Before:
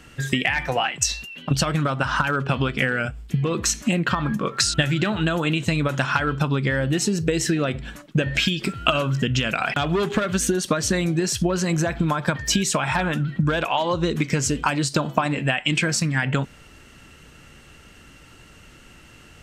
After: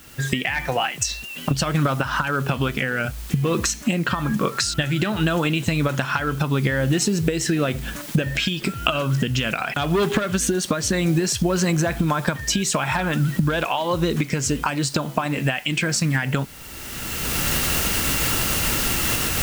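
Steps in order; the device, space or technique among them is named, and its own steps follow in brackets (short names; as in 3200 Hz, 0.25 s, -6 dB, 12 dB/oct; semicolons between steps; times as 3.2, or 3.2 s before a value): cheap recorder with automatic gain (white noise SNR 23 dB; recorder AGC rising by 22 dB/s); gain -3 dB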